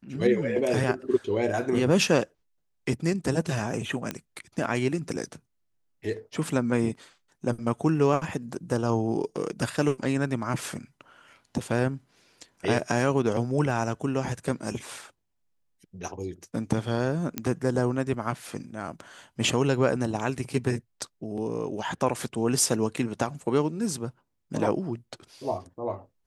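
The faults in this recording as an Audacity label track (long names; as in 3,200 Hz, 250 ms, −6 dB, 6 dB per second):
4.110000	4.110000	click −15 dBFS
17.380000	17.380000	click −13 dBFS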